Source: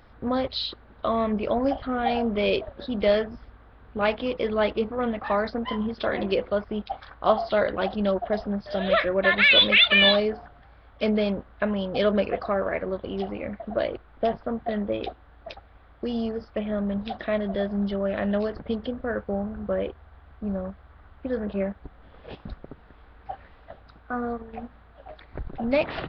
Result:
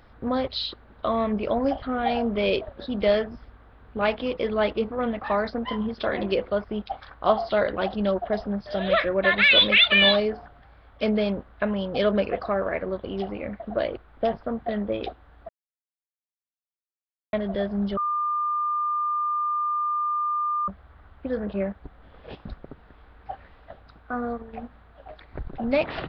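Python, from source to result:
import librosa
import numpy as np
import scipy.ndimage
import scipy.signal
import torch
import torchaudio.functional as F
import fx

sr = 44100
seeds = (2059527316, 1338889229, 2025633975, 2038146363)

y = fx.edit(x, sr, fx.silence(start_s=15.49, length_s=1.84),
    fx.bleep(start_s=17.97, length_s=2.71, hz=1200.0, db=-22.5), tone=tone)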